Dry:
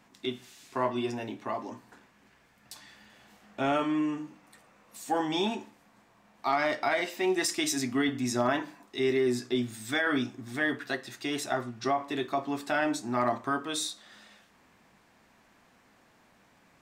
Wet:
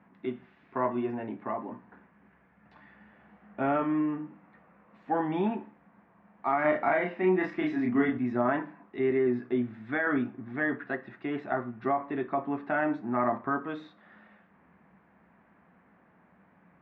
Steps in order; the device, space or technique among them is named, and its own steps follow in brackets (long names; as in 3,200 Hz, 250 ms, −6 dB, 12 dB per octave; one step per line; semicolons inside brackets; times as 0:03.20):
bass cabinet (loudspeaker in its box 68–2,000 Hz, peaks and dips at 69 Hz +6 dB, 120 Hz −3 dB, 180 Hz +10 dB)
0:06.61–0:08.18: double-tracking delay 33 ms −2 dB